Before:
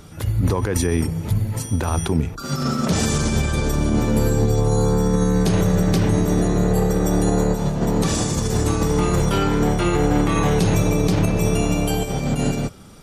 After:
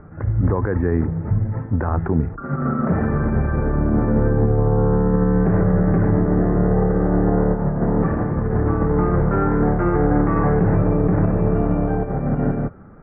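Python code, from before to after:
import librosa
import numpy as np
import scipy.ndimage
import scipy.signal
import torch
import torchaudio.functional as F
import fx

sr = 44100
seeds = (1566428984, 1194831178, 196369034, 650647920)

y = scipy.signal.sosfilt(scipy.signal.butter(8, 1800.0, 'lowpass', fs=sr, output='sos'), x)
y = fx.notch(y, sr, hz=960.0, q=18.0)
y = F.gain(torch.from_numpy(y), 1.0).numpy()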